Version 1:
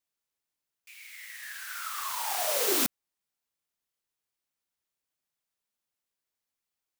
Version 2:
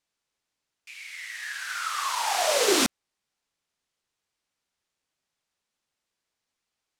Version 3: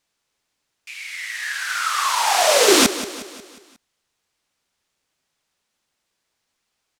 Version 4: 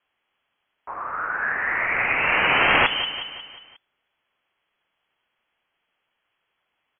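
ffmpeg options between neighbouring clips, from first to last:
-af "lowpass=7.4k,volume=7.5dB"
-af "aecho=1:1:180|360|540|720|900:0.2|0.0998|0.0499|0.0249|0.0125,volume=8dB"
-af "lowpass=f=2.9k:t=q:w=0.5098,lowpass=f=2.9k:t=q:w=0.6013,lowpass=f=2.9k:t=q:w=0.9,lowpass=f=2.9k:t=q:w=2.563,afreqshift=-3400,afftfilt=real='re*lt(hypot(re,im),0.398)':imag='im*lt(hypot(re,im),0.398)':win_size=1024:overlap=0.75,volume=4dB"

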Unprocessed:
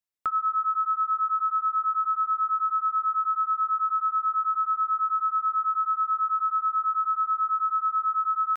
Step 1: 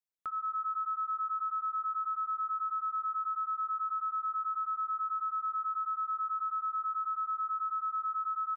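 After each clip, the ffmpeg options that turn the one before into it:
-filter_complex "[0:a]alimiter=limit=-23dB:level=0:latency=1,asplit=2[a][b];[b]adelay=110,lowpass=f=2k:p=1,volume=-16dB,asplit=2[c][d];[d]adelay=110,lowpass=f=2k:p=1,volume=0.55,asplit=2[e][f];[f]adelay=110,lowpass=f=2k:p=1,volume=0.55,asplit=2[g][h];[h]adelay=110,lowpass=f=2k:p=1,volume=0.55,asplit=2[i][j];[j]adelay=110,lowpass=f=2k:p=1,volume=0.55[k];[a][c][e][g][i][k]amix=inputs=6:normalize=0,volume=-8dB"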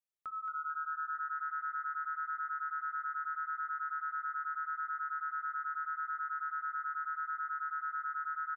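-filter_complex "[0:a]bandreject=f=60:t=h:w=6,bandreject=f=120:t=h:w=6,bandreject=f=180:t=h:w=6,bandreject=f=240:t=h:w=6,bandreject=f=300:t=h:w=6,bandreject=f=360:t=h:w=6,bandreject=f=420:t=h:w=6,bandreject=f=480:t=h:w=6,asplit=6[a][b][c][d][e][f];[b]adelay=221,afreqshift=150,volume=-7dB[g];[c]adelay=442,afreqshift=300,volume=-14.3dB[h];[d]adelay=663,afreqshift=450,volume=-21.7dB[i];[e]adelay=884,afreqshift=600,volume=-29dB[j];[f]adelay=1105,afreqshift=750,volume=-36.3dB[k];[a][g][h][i][j][k]amix=inputs=6:normalize=0,volume=-5dB"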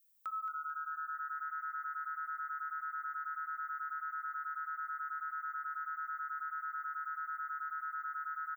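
-af "alimiter=level_in=13.5dB:limit=-24dB:level=0:latency=1:release=266,volume=-13.5dB,aemphasis=mode=production:type=riaa,volume=2.5dB"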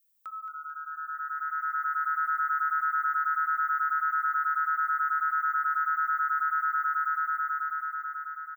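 -af "dynaudnorm=f=440:g=7:m=13dB"

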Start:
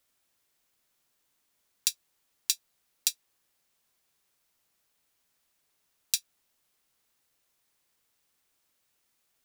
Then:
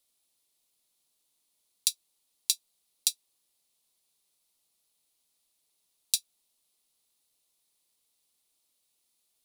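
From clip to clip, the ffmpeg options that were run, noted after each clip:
-af "equalizer=f=100:t=o:w=0.67:g=-8,equalizer=f=1.6k:t=o:w=0.67:g=-10,equalizer=f=4k:t=o:w=0.67:g=7,equalizer=f=10k:t=o:w=0.67:g=9,volume=-4.5dB"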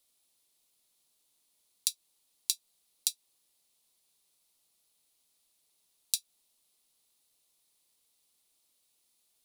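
-af "acompressor=threshold=-27dB:ratio=6,volume=2dB"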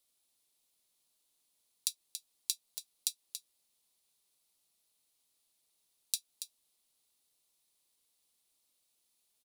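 -af "aecho=1:1:281:0.335,volume=-4dB"

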